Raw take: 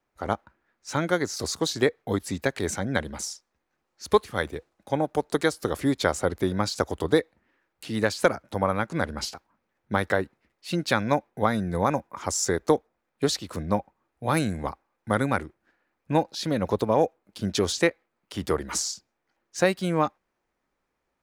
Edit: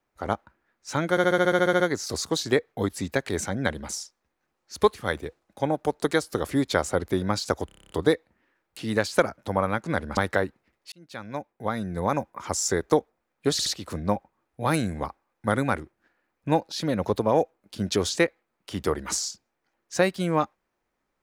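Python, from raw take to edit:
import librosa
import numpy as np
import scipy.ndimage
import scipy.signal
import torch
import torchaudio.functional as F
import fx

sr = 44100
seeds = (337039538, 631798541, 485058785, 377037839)

y = fx.edit(x, sr, fx.stutter(start_s=1.1, slice_s=0.07, count=11),
    fx.stutter(start_s=6.96, slice_s=0.03, count=9),
    fx.cut(start_s=9.23, length_s=0.71),
    fx.fade_in_span(start_s=10.69, length_s=1.39),
    fx.stutter(start_s=13.29, slice_s=0.07, count=3), tone=tone)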